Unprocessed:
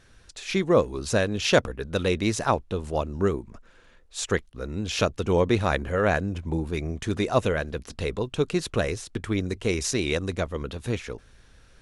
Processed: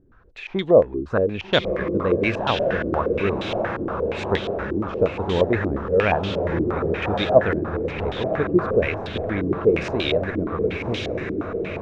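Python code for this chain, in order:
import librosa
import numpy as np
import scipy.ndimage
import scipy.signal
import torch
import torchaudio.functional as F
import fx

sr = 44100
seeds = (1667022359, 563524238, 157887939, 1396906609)

y = fx.echo_diffused(x, sr, ms=1211, feedback_pct=61, wet_db=-4.5)
y = fx.filter_held_lowpass(y, sr, hz=8.5, low_hz=330.0, high_hz=3400.0)
y = y * librosa.db_to_amplitude(-1.0)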